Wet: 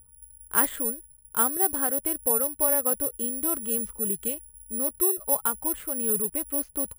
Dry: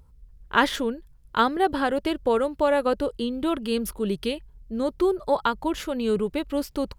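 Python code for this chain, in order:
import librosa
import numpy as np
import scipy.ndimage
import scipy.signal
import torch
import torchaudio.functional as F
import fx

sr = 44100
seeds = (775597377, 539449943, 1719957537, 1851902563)

y = scipy.signal.sosfilt(scipy.signal.butter(2, 2500.0, 'lowpass', fs=sr, output='sos'), x)
y = (np.kron(y[::4], np.eye(4)[0]) * 4)[:len(y)]
y = y * librosa.db_to_amplitude(-8.0)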